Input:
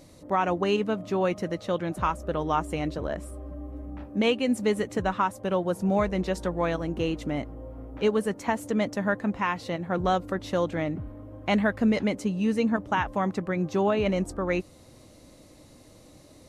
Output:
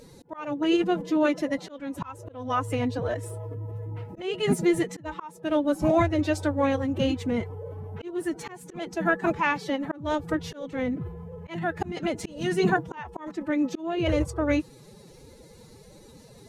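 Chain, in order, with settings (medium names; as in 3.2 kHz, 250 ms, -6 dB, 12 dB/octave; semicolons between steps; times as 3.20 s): coarse spectral quantiser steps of 15 dB; formant-preserving pitch shift +8.5 st; slow attack 398 ms; trim +3.5 dB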